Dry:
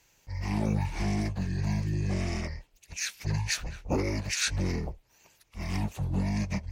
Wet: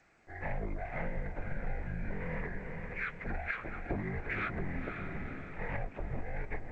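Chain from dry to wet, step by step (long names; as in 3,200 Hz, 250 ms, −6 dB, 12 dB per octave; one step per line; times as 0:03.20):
single-sideband voice off tune −180 Hz 160–2,400 Hz
feedback delay with all-pass diffusion 483 ms, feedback 45%, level −9.5 dB
downward compressor 16 to 1, threshold −36 dBFS, peak gain reduction 12.5 dB
0:01.13–0:01.83: double-tracking delay 42 ms −10 dB
0:02.54–0:03.43: hum removal 183.3 Hz, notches 4
digital clicks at 0:04.31, −36 dBFS
level +4.5 dB
G.722 64 kbit/s 16,000 Hz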